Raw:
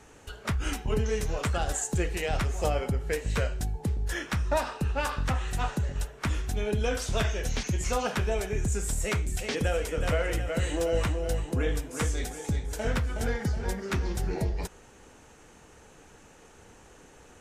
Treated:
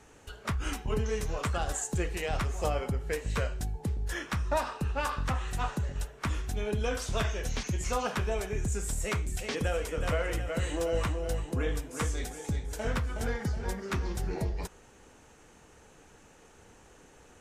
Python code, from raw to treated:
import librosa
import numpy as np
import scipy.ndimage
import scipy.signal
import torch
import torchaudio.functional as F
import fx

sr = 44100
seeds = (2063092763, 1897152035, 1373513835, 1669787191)

y = fx.dynamic_eq(x, sr, hz=1100.0, q=3.6, threshold_db=-50.0, ratio=4.0, max_db=5)
y = F.gain(torch.from_numpy(y), -3.0).numpy()